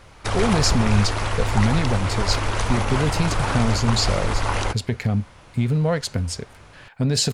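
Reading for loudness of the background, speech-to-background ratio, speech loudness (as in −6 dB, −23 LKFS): −24.5 LKFS, 1.0 dB, −23.5 LKFS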